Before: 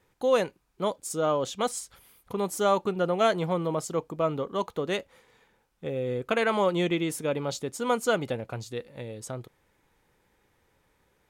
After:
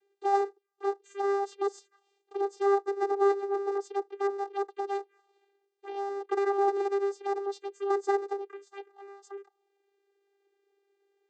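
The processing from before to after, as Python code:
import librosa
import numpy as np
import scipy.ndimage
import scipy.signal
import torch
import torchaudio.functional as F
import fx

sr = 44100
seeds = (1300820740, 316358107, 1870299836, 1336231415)

y = fx.cycle_switch(x, sr, every=2, mode='inverted')
y = fx.env_phaser(y, sr, low_hz=180.0, high_hz=2800.0, full_db=-26.0)
y = fx.vocoder(y, sr, bands=16, carrier='saw', carrier_hz=398.0)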